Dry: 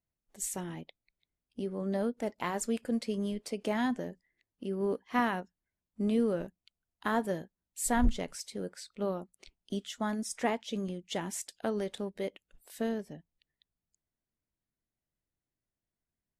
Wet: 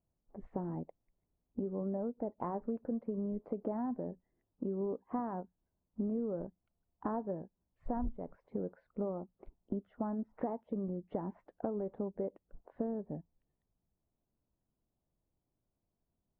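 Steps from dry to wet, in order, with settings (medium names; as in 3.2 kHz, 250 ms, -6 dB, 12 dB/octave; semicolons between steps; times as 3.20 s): low-pass 1 kHz 24 dB/octave; compression 6:1, threshold -42 dBFS, peak gain reduction 20.5 dB; trim +7.5 dB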